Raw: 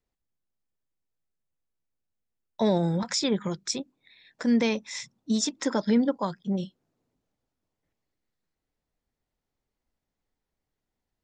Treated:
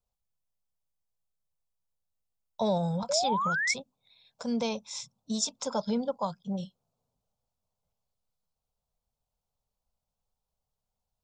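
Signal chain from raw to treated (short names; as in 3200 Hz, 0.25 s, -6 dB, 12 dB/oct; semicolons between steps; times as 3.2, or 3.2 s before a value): fixed phaser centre 770 Hz, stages 4; painted sound rise, 3.09–3.74, 540–2300 Hz -29 dBFS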